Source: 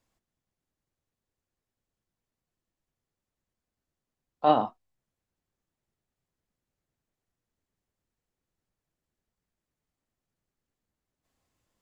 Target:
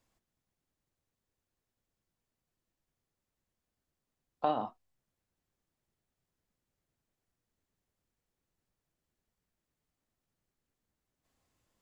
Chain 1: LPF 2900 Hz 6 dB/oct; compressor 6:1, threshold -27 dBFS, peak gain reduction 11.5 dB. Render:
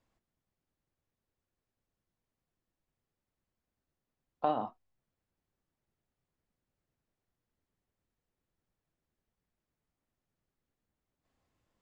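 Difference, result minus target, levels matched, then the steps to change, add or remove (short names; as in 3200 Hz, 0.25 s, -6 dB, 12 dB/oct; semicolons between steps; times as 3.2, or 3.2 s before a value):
4000 Hz band -3.0 dB
remove: LPF 2900 Hz 6 dB/oct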